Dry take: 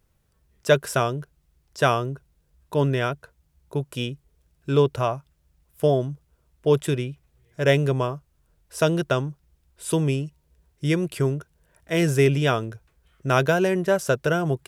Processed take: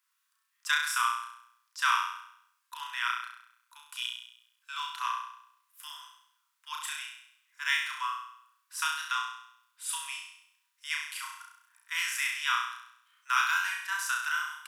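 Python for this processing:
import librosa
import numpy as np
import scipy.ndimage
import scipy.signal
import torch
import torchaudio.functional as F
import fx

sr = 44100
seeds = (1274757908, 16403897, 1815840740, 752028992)

p1 = scipy.signal.sosfilt(scipy.signal.butter(16, 970.0, 'highpass', fs=sr, output='sos'), x)
p2 = p1 + fx.room_flutter(p1, sr, wall_m=5.7, rt60_s=0.7, dry=0)
y = F.gain(torch.from_numpy(p2), -3.5).numpy()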